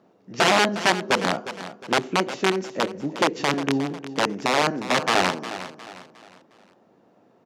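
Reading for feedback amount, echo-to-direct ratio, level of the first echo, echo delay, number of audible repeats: 39%, -12.5 dB, -13.0 dB, 358 ms, 3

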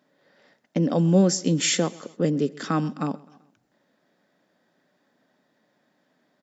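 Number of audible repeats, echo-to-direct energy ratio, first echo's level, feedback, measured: 3, -21.5 dB, -22.5 dB, 50%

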